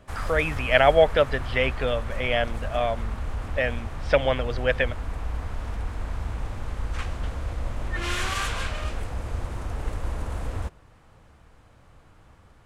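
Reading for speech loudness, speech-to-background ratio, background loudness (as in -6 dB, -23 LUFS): -24.0 LUFS, 9.0 dB, -33.0 LUFS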